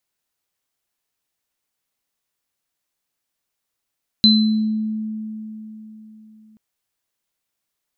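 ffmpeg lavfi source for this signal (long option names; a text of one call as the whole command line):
ffmpeg -f lavfi -i "aevalsrc='0.282*pow(10,-3*t/3.85)*sin(2*PI*217*t)+0.398*pow(10,-3*t/0.59)*sin(2*PI*4050*t)':duration=2.33:sample_rate=44100" out.wav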